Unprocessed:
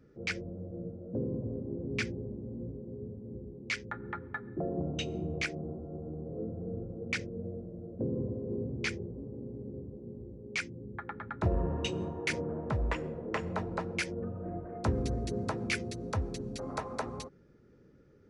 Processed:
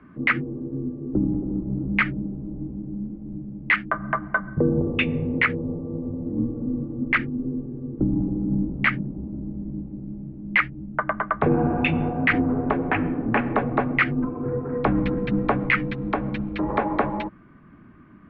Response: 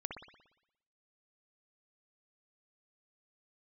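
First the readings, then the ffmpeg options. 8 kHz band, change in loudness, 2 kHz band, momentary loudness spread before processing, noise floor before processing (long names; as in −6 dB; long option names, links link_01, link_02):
below −25 dB, +12.0 dB, +15.0 dB, 10 LU, −60 dBFS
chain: -af "asubboost=boost=2.5:cutoff=250,highpass=frequency=400:width_type=q:width=0.5412,highpass=frequency=400:width_type=q:width=1.307,lowpass=frequency=2900:width_type=q:width=0.5176,lowpass=frequency=2900:width_type=q:width=0.7071,lowpass=frequency=2900:width_type=q:width=1.932,afreqshift=-210,alimiter=level_in=27dB:limit=-1dB:release=50:level=0:latency=1,volume=-8dB"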